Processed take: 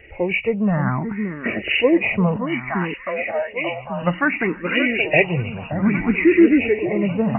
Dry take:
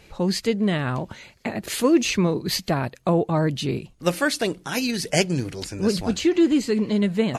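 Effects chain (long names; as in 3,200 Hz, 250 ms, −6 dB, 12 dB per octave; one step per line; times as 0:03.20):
hearing-aid frequency compression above 1,800 Hz 4 to 1
0:02.36–0:03.95: Chebyshev high-pass filter 520 Hz, order 8
delay that swaps between a low-pass and a high-pass 574 ms, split 1,500 Hz, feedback 72%, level −7.5 dB
frequency shifter mixed with the dry sound +0.61 Hz
level +5.5 dB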